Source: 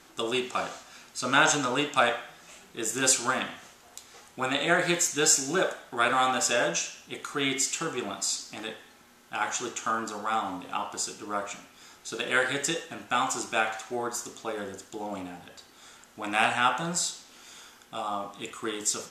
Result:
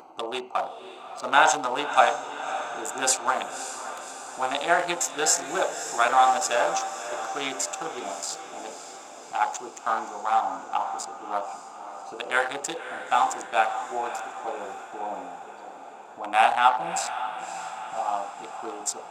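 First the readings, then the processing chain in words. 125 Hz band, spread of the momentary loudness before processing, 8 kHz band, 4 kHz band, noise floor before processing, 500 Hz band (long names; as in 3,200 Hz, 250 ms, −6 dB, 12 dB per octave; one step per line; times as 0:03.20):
below −10 dB, 18 LU, −1.5 dB, −2.0 dB, −56 dBFS, +2.0 dB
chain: adaptive Wiener filter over 25 samples
high-pass filter 620 Hz 6 dB per octave
parametric band 810 Hz +12.5 dB 0.89 octaves
upward compression, threshold −41 dBFS
on a send: feedback delay with all-pass diffusion 572 ms, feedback 61%, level −11 dB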